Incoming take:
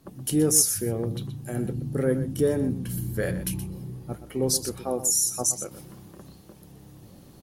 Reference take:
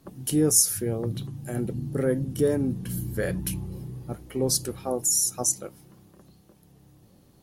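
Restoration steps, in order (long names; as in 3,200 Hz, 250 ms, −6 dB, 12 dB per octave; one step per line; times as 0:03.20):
clipped peaks rebuilt −9.5 dBFS
echo removal 123 ms −12 dB
level 0 dB, from 0:05.71 −7.5 dB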